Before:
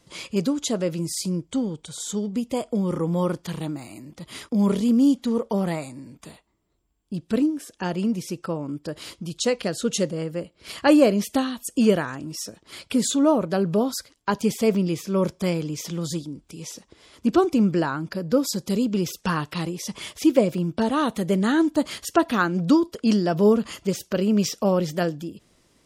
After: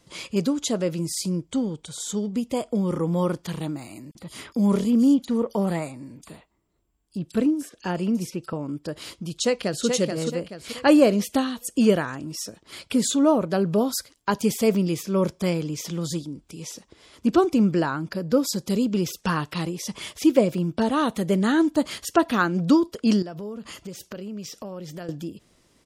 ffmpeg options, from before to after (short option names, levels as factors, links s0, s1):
-filter_complex "[0:a]asettb=1/sr,asplit=3[s0][s1][s2];[s0]atrim=end=4.114[s3];[s1]atrim=start=4.11:end=8.53,asetpts=PTS-STARTPTS,afade=t=in:d=0.004:c=qsin,afade=t=out:st=4.416:d=0.004:c=qsin,acrossover=split=3800[s4][s5];[s4]adelay=40[s6];[s6][s5]amix=inputs=2:normalize=0,atrim=end_sample=194922[s7];[s2]atrim=start=8.526[s8];[s3][s7]acrossfade=d=0.004:c1=hsin:c2=qsin[s9];[s9][s8]acrossfade=d=0.004:c1=qsin:c2=hsin,asplit=2[s10][s11];[s11]afade=t=in:st=9.3:d=0.01,afade=t=out:st=9.86:d=0.01,aecho=0:1:430|860|1290|1720|2150:0.595662|0.238265|0.0953059|0.0381224|0.015249[s12];[s10][s12]amix=inputs=2:normalize=0,asettb=1/sr,asplit=3[s13][s14][s15];[s13]atrim=end=13.784[s16];[s14]atrim=start=13.78:end=15.03,asetpts=PTS-STARTPTS,afade=t=in:d=0.004:c=qsin,afade=t=out:st=1.246:d=0.004:c=qsin,highshelf=f=8100:g=6.5[s17];[s15]atrim=start=15.026[s18];[s16][s17]acrossfade=d=0.004:c1=hsin:c2=qsin[s19];[s19][s18]acrossfade=d=0.004:c1=qsin:c2=hsin,asettb=1/sr,asplit=3[s20][s21][s22];[s20]atrim=end=23.224[s23];[s21]atrim=start=23.22:end=25.09,asetpts=PTS-STARTPTS,afade=t=in:d=0.004:c=qsin,afade=t=out:st=1.866:d=0.004:c=qsin,acompressor=threshold=0.0178:ratio=4:attack=3.2:release=140:knee=1:detection=peak[s24];[s22]atrim=start=25.086[s25];[s23][s24]acrossfade=d=0.004:c1=hsin:c2=qsin[s26];[s26][s25]acrossfade=d=0.004:c1=qsin:c2=hsin"